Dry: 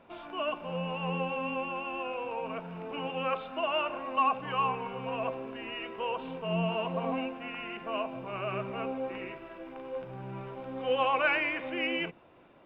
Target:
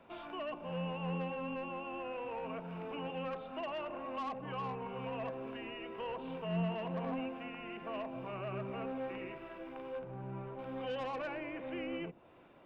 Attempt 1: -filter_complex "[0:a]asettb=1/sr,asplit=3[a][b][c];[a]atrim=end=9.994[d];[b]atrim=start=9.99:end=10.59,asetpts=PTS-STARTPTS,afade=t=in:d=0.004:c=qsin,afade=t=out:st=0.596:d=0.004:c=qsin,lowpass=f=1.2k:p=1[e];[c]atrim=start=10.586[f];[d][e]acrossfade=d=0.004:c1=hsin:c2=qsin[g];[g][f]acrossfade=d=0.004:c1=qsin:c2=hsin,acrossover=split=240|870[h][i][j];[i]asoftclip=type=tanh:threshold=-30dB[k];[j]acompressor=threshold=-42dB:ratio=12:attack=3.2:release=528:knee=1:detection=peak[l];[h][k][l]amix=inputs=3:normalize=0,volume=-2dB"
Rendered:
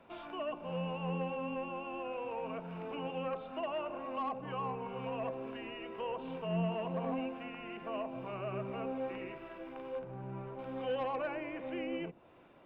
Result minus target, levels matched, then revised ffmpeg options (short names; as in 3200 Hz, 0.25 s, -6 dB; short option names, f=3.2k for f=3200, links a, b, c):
soft clip: distortion -7 dB
-filter_complex "[0:a]asettb=1/sr,asplit=3[a][b][c];[a]atrim=end=9.994[d];[b]atrim=start=9.99:end=10.59,asetpts=PTS-STARTPTS,afade=t=in:d=0.004:c=qsin,afade=t=out:st=0.596:d=0.004:c=qsin,lowpass=f=1.2k:p=1[e];[c]atrim=start=10.586[f];[d][e]acrossfade=d=0.004:c1=hsin:c2=qsin[g];[g][f]acrossfade=d=0.004:c1=qsin:c2=hsin,acrossover=split=240|870[h][i][j];[i]asoftclip=type=tanh:threshold=-37dB[k];[j]acompressor=threshold=-42dB:ratio=12:attack=3.2:release=528:knee=1:detection=peak[l];[h][k][l]amix=inputs=3:normalize=0,volume=-2dB"